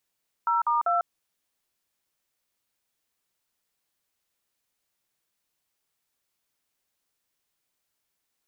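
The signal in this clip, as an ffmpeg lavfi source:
-f lavfi -i "aevalsrc='0.0668*clip(min(mod(t,0.196),0.148-mod(t,0.196))/0.002,0,1)*(eq(floor(t/0.196),0)*(sin(2*PI*941*mod(t,0.196))+sin(2*PI*1336*mod(t,0.196)))+eq(floor(t/0.196),1)*(sin(2*PI*941*mod(t,0.196))+sin(2*PI*1209*mod(t,0.196)))+eq(floor(t/0.196),2)*(sin(2*PI*697*mod(t,0.196))+sin(2*PI*1336*mod(t,0.196))))':d=0.588:s=44100"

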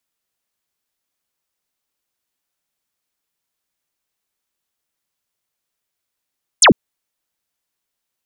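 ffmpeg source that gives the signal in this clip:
-f lavfi -i "aevalsrc='0.562*clip(t/0.002,0,1)*clip((0.1-t)/0.002,0,1)*sin(2*PI*10000*0.1/log(150/10000)*(exp(log(150/10000)*t/0.1)-1))':d=0.1:s=44100"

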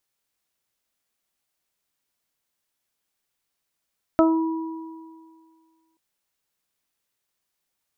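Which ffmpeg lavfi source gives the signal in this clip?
-f lavfi -i "aevalsrc='0.2*pow(10,-3*t/1.9)*sin(2*PI*324*t)+0.211*pow(10,-3*t/0.3)*sin(2*PI*648*t)+0.0562*pow(10,-3*t/2.15)*sin(2*PI*972*t)+0.1*pow(10,-3*t/0.29)*sin(2*PI*1296*t)':d=1.78:s=44100"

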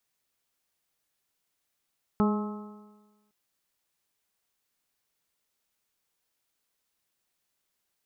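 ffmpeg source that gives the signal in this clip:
-f lavfi -i "aevalsrc='0.1*pow(10,-3*t/1.25)*sin(2*PI*208.21*t)+0.0447*pow(10,-3*t/1.25)*sin(2*PI*417.66*t)+0.015*pow(10,-3*t/1.25)*sin(2*PI*629.59*t)+0.0266*pow(10,-3*t/1.25)*sin(2*PI*845.21*t)+0.02*pow(10,-3*t/1.25)*sin(2*PI*1065.68*t)+0.0266*pow(10,-3*t/1.25)*sin(2*PI*1292.15*t)':d=1.11:s=44100"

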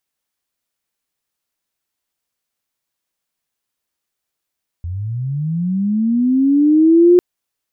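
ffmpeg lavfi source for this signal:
-f lavfi -i "aevalsrc='pow(10,(-21.5+16.5*t/2.35)/20)*sin(2*PI*(82*t+278*t*t/(2*2.35)))':d=2.35:s=44100"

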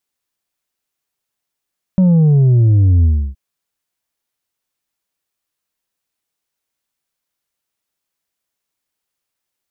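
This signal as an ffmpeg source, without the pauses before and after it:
-f lavfi -i "aevalsrc='0.398*clip((1.37-t)/0.31,0,1)*tanh(1.58*sin(2*PI*190*1.37/log(65/190)*(exp(log(65/190)*t/1.37)-1)))/tanh(1.58)':d=1.37:s=44100"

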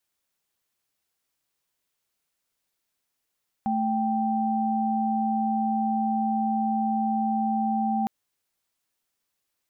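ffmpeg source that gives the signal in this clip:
-f lavfi -i "aevalsrc='0.0562*(sin(2*PI*220*t)+sin(2*PI*783.99*t))':d=4.41:s=44100"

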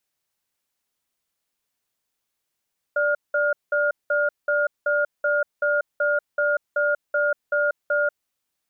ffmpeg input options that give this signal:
-f lavfi -i "aevalsrc='0.0891*(sin(2*PI*587*t)+sin(2*PI*1420*t))*clip(min(mod(t,0.38),0.19-mod(t,0.38))/0.005,0,1)':d=5.13:s=44100"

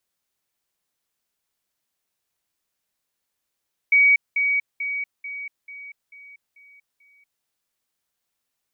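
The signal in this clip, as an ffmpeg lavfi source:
-f lavfi -i "aevalsrc='pow(10,(-12-6*floor(t/0.44))/20)*sin(2*PI*2260*t)*clip(min(mod(t,0.44),0.24-mod(t,0.44))/0.005,0,1)':d=3.52:s=44100"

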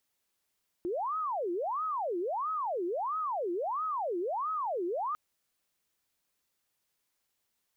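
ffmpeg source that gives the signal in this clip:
-f lavfi -i "aevalsrc='0.0316*sin(2*PI*(811*t-469/(2*PI*1.5)*sin(2*PI*1.5*t)))':d=4.3:s=44100"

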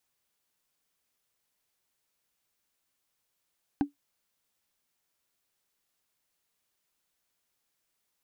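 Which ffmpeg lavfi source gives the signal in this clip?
-f lavfi -i "aevalsrc='0.126*pow(10,-3*t/0.13)*sin(2*PI*286*t)+0.0501*pow(10,-3*t/0.038)*sin(2*PI*788.5*t)+0.02*pow(10,-3*t/0.017)*sin(2*PI*1545.5*t)+0.00794*pow(10,-3*t/0.009)*sin(2*PI*2554.8*t)+0.00316*pow(10,-3*t/0.006)*sin(2*PI*3815.2*t)':d=0.45:s=44100"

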